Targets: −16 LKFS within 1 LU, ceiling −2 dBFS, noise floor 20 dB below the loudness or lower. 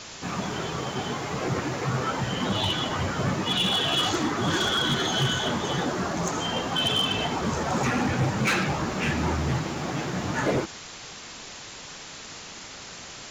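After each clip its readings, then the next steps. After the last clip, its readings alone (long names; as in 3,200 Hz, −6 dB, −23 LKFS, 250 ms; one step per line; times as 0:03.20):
share of clipped samples 1.1%; peaks flattened at −19.0 dBFS; background noise floor −42 dBFS; target noise floor −46 dBFS; integrated loudness −26.0 LKFS; sample peak −19.0 dBFS; target loudness −16.0 LKFS
→ clipped peaks rebuilt −19 dBFS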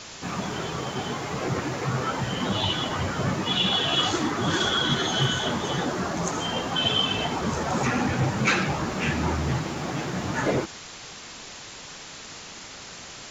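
share of clipped samples 0.0%; background noise floor −42 dBFS; target noise floor −46 dBFS
→ broadband denoise 6 dB, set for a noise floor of −42 dBFS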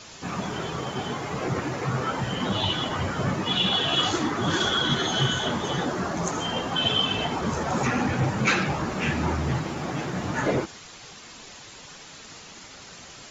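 background noise floor −45 dBFS; target noise floor −46 dBFS
→ broadband denoise 6 dB, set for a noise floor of −45 dBFS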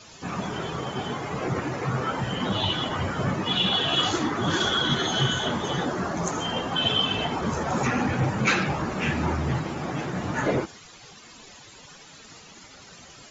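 background noise floor −48 dBFS; integrated loudness −25.5 LKFS; sample peak −10.0 dBFS; target loudness −16.0 LKFS
→ level +9.5 dB
brickwall limiter −2 dBFS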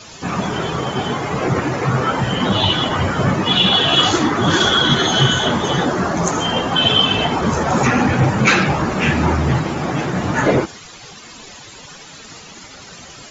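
integrated loudness −16.0 LKFS; sample peak −2.0 dBFS; background noise floor −39 dBFS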